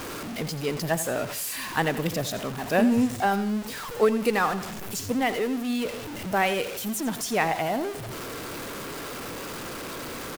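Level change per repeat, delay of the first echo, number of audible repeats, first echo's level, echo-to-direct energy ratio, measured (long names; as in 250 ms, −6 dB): −8.0 dB, 86 ms, 2, −13.5 dB, −13.0 dB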